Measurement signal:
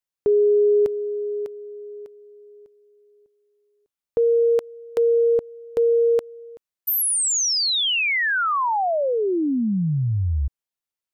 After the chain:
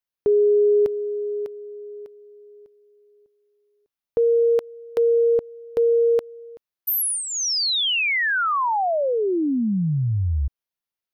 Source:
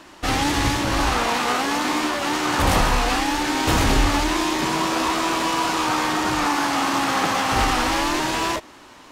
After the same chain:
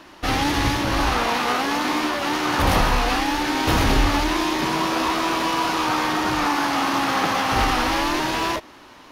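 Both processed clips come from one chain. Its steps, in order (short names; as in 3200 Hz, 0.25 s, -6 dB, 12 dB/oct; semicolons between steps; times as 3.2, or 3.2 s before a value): bell 7800 Hz -9.5 dB 0.41 oct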